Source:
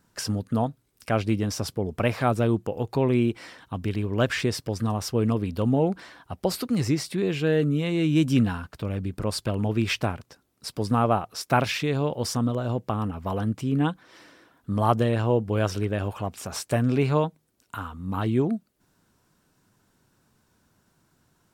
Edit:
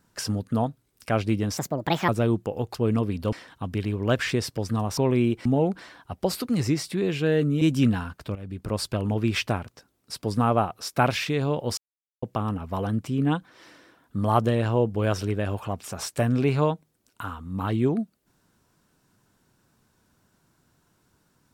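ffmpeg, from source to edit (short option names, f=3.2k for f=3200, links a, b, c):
-filter_complex "[0:a]asplit=11[a][b][c][d][e][f][g][h][i][j][k];[a]atrim=end=1.574[l];[b]atrim=start=1.57:end=2.29,asetpts=PTS-STARTPTS,asetrate=61740,aresample=44100[m];[c]atrim=start=2.286:end=2.952[n];[d]atrim=start=5.078:end=5.662[o];[e]atrim=start=3.428:end=5.082[p];[f]atrim=start=2.948:end=3.432[q];[g]atrim=start=5.658:end=7.822[r];[h]atrim=start=8.148:end=8.89,asetpts=PTS-STARTPTS,afade=t=out:st=0.738:d=0.004:c=hsin:silence=0.211349[s];[i]atrim=start=8.89:end=12.31,asetpts=PTS-STARTPTS,afade=t=in:d=0.38:silence=0.211349,afade=t=out:st=3.416:d=0.004:c=hsin[t];[j]atrim=start=12.31:end=12.76,asetpts=PTS-STARTPTS,volume=0[u];[k]atrim=start=12.76,asetpts=PTS-STARTPTS,afade=t=in:d=0.004:c=hsin[v];[l][m]acrossfade=d=0.004:c1=hsin:c2=hsin[w];[w][n]acrossfade=d=0.004:c1=hsin:c2=hsin[x];[x][o]acrossfade=d=0.004:c1=hsin:c2=hsin[y];[y][p]acrossfade=d=0.004:c1=hsin:c2=hsin[z];[z][q]acrossfade=d=0.004:c1=hsin:c2=hsin[aa];[aa][r]acrossfade=d=0.004:c1=hsin:c2=hsin[ab];[s][t][u][v]concat=n=4:v=0:a=1[ac];[ab][ac]acrossfade=d=0.004:c1=hsin:c2=hsin"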